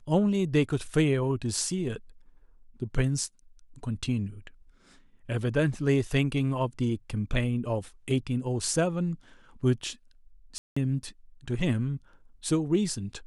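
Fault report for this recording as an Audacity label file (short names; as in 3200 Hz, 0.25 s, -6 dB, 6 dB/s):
10.580000	10.770000	gap 0.185 s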